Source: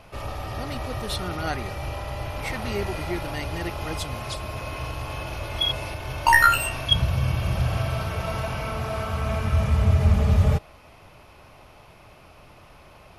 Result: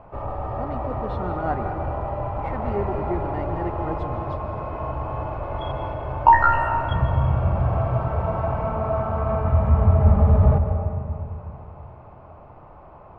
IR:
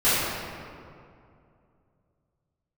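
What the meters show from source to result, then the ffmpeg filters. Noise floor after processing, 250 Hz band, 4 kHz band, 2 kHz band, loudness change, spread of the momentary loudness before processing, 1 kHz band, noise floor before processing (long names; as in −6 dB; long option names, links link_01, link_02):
−45 dBFS, +3.5 dB, −19.5 dB, −6.5 dB, +2.0 dB, 13 LU, +5.0 dB, −50 dBFS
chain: -filter_complex "[0:a]lowpass=frequency=940:width_type=q:width=1.7,asplit=2[link_01][link_02];[1:a]atrim=start_sample=2205,adelay=129[link_03];[link_02][link_03]afir=irnorm=-1:irlink=0,volume=-25dB[link_04];[link_01][link_04]amix=inputs=2:normalize=0,volume=1.5dB"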